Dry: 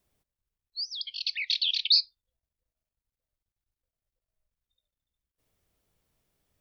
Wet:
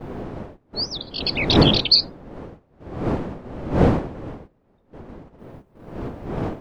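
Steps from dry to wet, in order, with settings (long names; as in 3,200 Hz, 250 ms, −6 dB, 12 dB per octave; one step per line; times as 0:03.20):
time-frequency cells dropped at random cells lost 23%
wind on the microphone 420 Hz −33 dBFS
noise gate −48 dBFS, range −12 dB
level +7.5 dB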